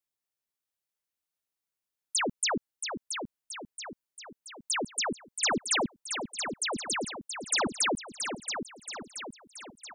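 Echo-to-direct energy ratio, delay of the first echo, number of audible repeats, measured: −5.5 dB, 677 ms, 5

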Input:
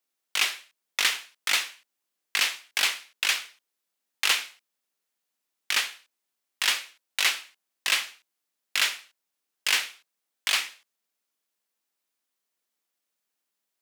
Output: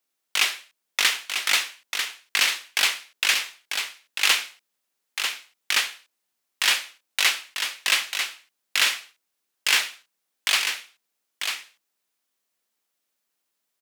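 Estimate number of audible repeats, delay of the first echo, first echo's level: 1, 944 ms, −6.5 dB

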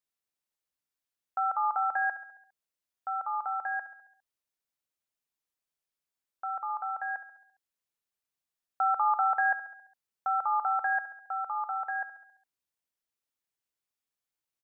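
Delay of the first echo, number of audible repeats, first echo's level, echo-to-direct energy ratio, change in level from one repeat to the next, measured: 68 ms, 5, −13.5 dB, −12.0 dB, −5.0 dB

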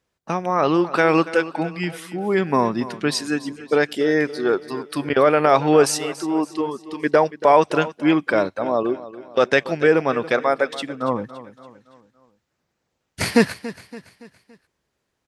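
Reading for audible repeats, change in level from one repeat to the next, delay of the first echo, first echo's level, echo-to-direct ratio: 3, −6.5 dB, 283 ms, −16.0 dB, −15.0 dB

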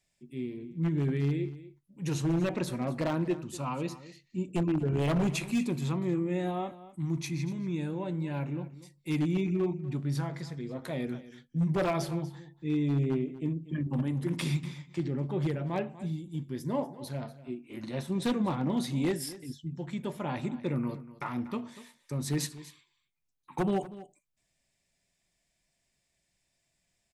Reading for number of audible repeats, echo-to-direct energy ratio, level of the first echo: 1, −16.5 dB, −16.5 dB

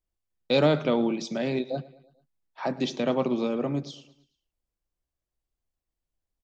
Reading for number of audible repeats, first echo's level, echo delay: 3, −20.0 dB, 110 ms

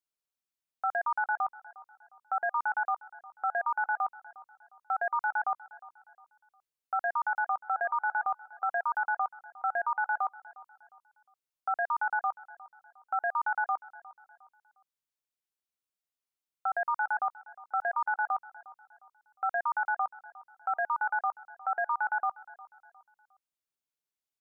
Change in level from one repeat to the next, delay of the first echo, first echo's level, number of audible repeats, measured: −8.5 dB, 357 ms, −20.0 dB, 2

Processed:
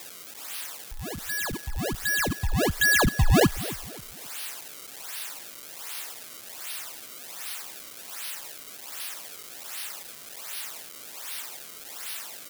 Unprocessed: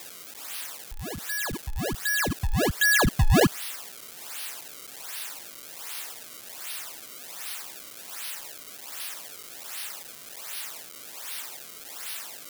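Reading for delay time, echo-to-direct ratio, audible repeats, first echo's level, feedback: 266 ms, −16.5 dB, 3, −17.0 dB, 37%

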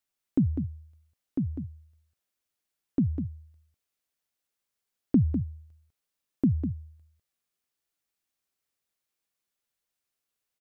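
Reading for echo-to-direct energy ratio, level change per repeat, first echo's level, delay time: −8.0 dB, repeats not evenly spaced, −8.0 dB, 200 ms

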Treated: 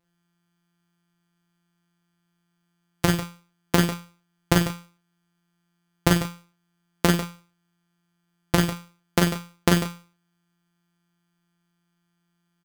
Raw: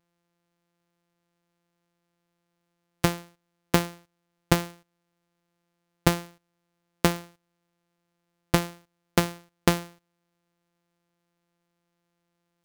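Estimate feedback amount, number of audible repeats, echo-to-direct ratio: repeats not evenly spaced, 4, 0.0 dB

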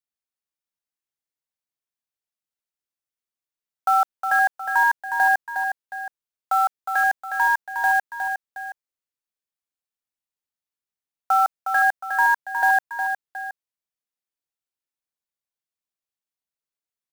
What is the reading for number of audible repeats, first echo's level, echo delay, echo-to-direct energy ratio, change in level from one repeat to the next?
2, −7.0 dB, 361 ms, −6.0 dB, −7.0 dB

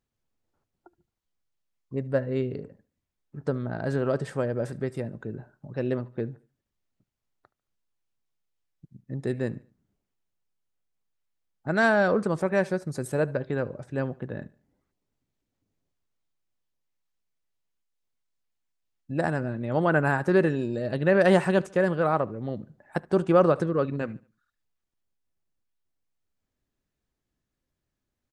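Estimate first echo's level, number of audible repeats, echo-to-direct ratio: −23.0 dB, 2, −22.5 dB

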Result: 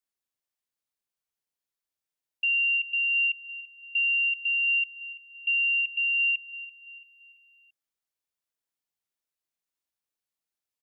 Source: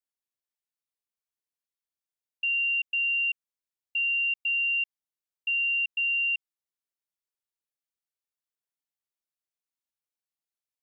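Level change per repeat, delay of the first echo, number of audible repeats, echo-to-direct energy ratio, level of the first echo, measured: −7.0 dB, 337 ms, 3, −14.5 dB, −15.5 dB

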